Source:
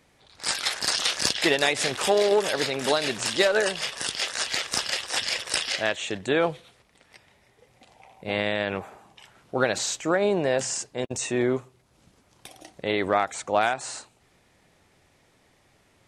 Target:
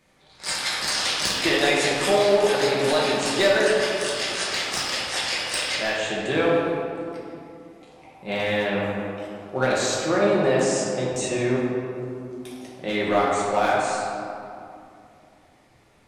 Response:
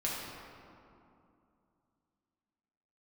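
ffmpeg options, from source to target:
-filter_complex "[0:a]asoftclip=type=hard:threshold=-13.5dB[link_01];[1:a]atrim=start_sample=2205[link_02];[link_01][link_02]afir=irnorm=-1:irlink=0,volume=-2dB"

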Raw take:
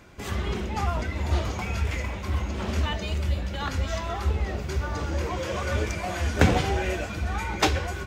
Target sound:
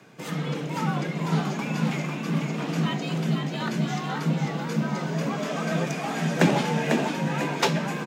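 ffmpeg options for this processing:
ffmpeg -i in.wav -filter_complex "[0:a]afreqshift=89,asplit=6[link_01][link_02][link_03][link_04][link_05][link_06];[link_02]adelay=497,afreqshift=59,volume=-5dB[link_07];[link_03]adelay=994,afreqshift=118,volume=-12.5dB[link_08];[link_04]adelay=1491,afreqshift=177,volume=-20.1dB[link_09];[link_05]adelay=1988,afreqshift=236,volume=-27.6dB[link_10];[link_06]adelay=2485,afreqshift=295,volume=-35.1dB[link_11];[link_01][link_07][link_08][link_09][link_10][link_11]amix=inputs=6:normalize=0,volume=-1dB" out.wav

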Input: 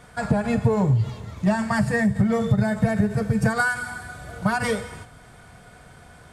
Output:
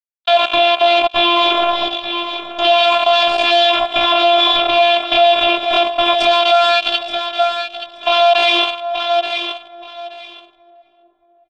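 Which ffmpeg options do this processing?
ffmpeg -i in.wav -filter_complex "[0:a]acrusher=bits=3:mix=0:aa=0.5,asplit=3[link_01][link_02][link_03];[link_01]bandpass=frequency=730:width_type=q:width=8,volume=0dB[link_04];[link_02]bandpass=frequency=1090:width_type=q:width=8,volume=-6dB[link_05];[link_03]bandpass=frequency=2440:width_type=q:width=8,volume=-9dB[link_06];[link_04][link_05][link_06]amix=inputs=3:normalize=0,asplit=2[link_07][link_08];[link_08]adelay=342,lowpass=frequency=840:poles=1,volume=-17dB,asplit=2[link_09][link_10];[link_10]adelay=342,lowpass=frequency=840:poles=1,volume=0.53,asplit=2[link_11][link_12];[link_12]adelay=342,lowpass=frequency=840:poles=1,volume=0.53,asplit=2[link_13][link_14];[link_14]adelay=342,lowpass=frequency=840:poles=1,volume=0.53,asplit=2[link_15][link_16];[link_16]adelay=342,lowpass=frequency=840:poles=1,volume=0.53[link_17];[link_09][link_11][link_13][link_15][link_17]amix=inputs=5:normalize=0[link_18];[link_07][link_18]amix=inputs=2:normalize=0,atempo=0.55,crystalizer=i=5.5:c=0,afftfilt=real='hypot(re,im)*cos(PI*b)':imag='0':win_size=512:overlap=0.75,lowpass=frequency=3500:width_type=q:width=7.1,asplit=2[link_19][link_20];[link_20]aecho=0:1:876|1752:0.224|0.0425[link_21];[link_19][link_21]amix=inputs=2:normalize=0,alimiter=level_in=27.5dB:limit=-1dB:release=50:level=0:latency=1,volume=-1dB" out.wav

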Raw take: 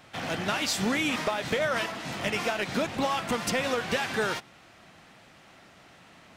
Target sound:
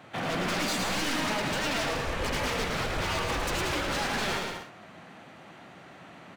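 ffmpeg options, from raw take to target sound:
ffmpeg -i in.wav -filter_complex "[0:a]highpass=110,highshelf=frequency=2700:gain=-10.5,bandreject=frequency=5200:width=9.7,aeval=exprs='0.0266*(abs(mod(val(0)/0.0266+3,4)-2)-1)':channel_layout=same,asettb=1/sr,asplit=3[link_01][link_02][link_03];[link_01]atrim=end=1.834[link_04];[link_02]atrim=start=1.83:end=3.94,asetpts=PTS-STARTPTS,afade=type=in:duration=0.004:curve=qsin,afade=type=out:start_time=2.106:duration=0.004:curve=qsin,afreqshift=-180[link_05];[link_03]atrim=start=3.936[link_06];[link_04][link_05]acrossfade=duration=0.004:curve1=hsin:curve2=qsin[link_07];[link_07][link_06]acrossfade=duration=0.004:curve1=qsin:curve2=hsin,aecho=1:1:110|187|240.9|278.6|305:0.631|0.398|0.251|0.158|0.1,volume=5dB" out.wav

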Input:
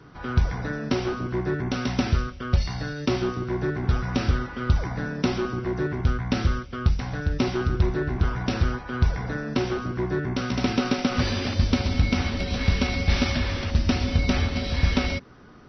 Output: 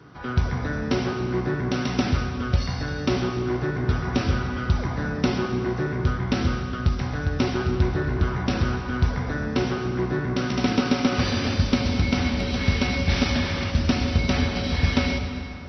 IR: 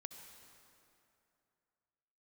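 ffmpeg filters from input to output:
-filter_complex "[0:a]highpass=61[link_01];[1:a]atrim=start_sample=2205[link_02];[link_01][link_02]afir=irnorm=-1:irlink=0,volume=6.5dB"

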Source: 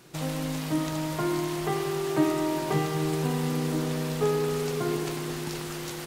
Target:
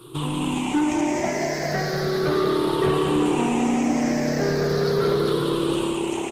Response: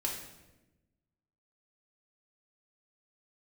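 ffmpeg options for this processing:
-filter_complex "[0:a]afftfilt=real='re*pow(10,22/40*sin(2*PI*(0.63*log(max(b,1)*sr/1024/100)/log(2)-(-0.38)*(pts-256)/sr)))':imag='im*pow(10,22/40*sin(2*PI*(0.63*log(max(b,1)*sr/1024/100)/log(2)-(-0.38)*(pts-256)/sr)))':win_size=1024:overlap=0.75,bandreject=frequency=347.3:width_type=h:width=4,bandreject=frequency=694.6:width_type=h:width=4,bandreject=frequency=1041.9:width_type=h:width=4,bandreject=frequency=1389.2:width_type=h:width=4,bandreject=frequency=1736.5:width_type=h:width=4,acrossover=split=8100[link_01][link_02];[link_02]acompressor=threshold=-53dB:ratio=4:attack=1:release=60[link_03];[link_01][link_03]amix=inputs=2:normalize=0,lowshelf=frequency=240:gain=-8.5,acrossover=split=720|1700[link_04][link_05][link_06];[link_04]acontrast=35[link_07];[link_07][link_05][link_06]amix=inputs=3:normalize=0,asplit=2[link_08][link_09];[link_09]adelay=408.2,volume=-25dB,highshelf=frequency=4000:gain=-9.18[link_10];[link_08][link_10]amix=inputs=2:normalize=0,aeval=exprs='0.501*(cos(1*acos(clip(val(0)/0.501,-1,1)))-cos(1*PI/2))+0.178*(cos(5*acos(clip(val(0)/0.501,-1,1)))-cos(5*PI/2))':channel_layout=same,asoftclip=type=tanh:threshold=-9dB,asplit=2[link_11][link_12];[link_12]asplit=8[link_13][link_14][link_15][link_16][link_17][link_18][link_19][link_20];[link_13]adelay=181,afreqshift=36,volume=-8dB[link_21];[link_14]adelay=362,afreqshift=72,volume=-12dB[link_22];[link_15]adelay=543,afreqshift=108,volume=-16dB[link_23];[link_16]adelay=724,afreqshift=144,volume=-20dB[link_24];[link_17]adelay=905,afreqshift=180,volume=-24.1dB[link_25];[link_18]adelay=1086,afreqshift=216,volume=-28.1dB[link_26];[link_19]adelay=1267,afreqshift=252,volume=-32.1dB[link_27];[link_20]adelay=1448,afreqshift=288,volume=-36.1dB[link_28];[link_21][link_22][link_23][link_24][link_25][link_26][link_27][link_28]amix=inputs=8:normalize=0[link_29];[link_11][link_29]amix=inputs=2:normalize=0,tremolo=f=61:d=0.182,asetrate=42336,aresample=44100,volume=-5.5dB" -ar 48000 -c:a libopus -b:a 20k

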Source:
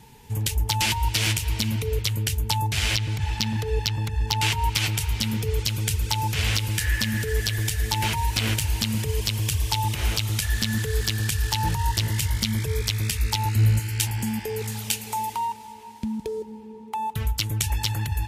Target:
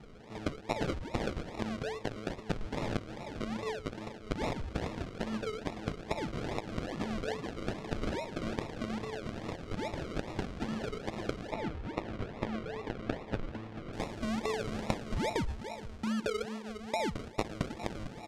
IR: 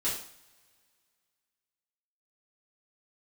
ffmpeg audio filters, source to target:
-af "acompressor=threshold=-29dB:ratio=6,highpass=frequency=200:width=0.5412,highpass=frequency=200:width=1.3066,aecho=1:1:37|63:0.2|0.188,acrusher=samples=40:mix=1:aa=0.000001:lfo=1:lforange=24:lforate=2.4,asetnsamples=nb_out_samples=441:pad=0,asendcmd='11.52 lowpass f 3200;13.93 lowpass f 6900',lowpass=5400"

